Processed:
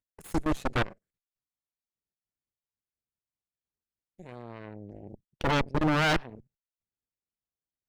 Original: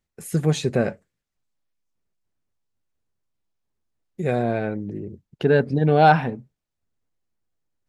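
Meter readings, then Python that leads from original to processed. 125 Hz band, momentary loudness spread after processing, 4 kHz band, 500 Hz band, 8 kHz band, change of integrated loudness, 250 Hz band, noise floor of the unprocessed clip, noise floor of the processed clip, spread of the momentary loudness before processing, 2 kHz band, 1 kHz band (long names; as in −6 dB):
−11.0 dB, 21 LU, 0.0 dB, −13.0 dB, can't be measured, −7.0 dB, −7.0 dB, −82 dBFS, below −85 dBFS, 17 LU, −4.0 dB, −10.5 dB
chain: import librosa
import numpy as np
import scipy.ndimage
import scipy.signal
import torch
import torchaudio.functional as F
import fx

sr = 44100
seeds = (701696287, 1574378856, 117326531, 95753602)

y = fx.level_steps(x, sr, step_db=20)
y = fx.cheby_harmonics(y, sr, harmonics=(3, 8), levels_db=(-13, -12), full_scale_db=-9.0)
y = np.clip(10.0 ** (20.0 / 20.0) * y, -1.0, 1.0) / 10.0 ** (20.0 / 20.0)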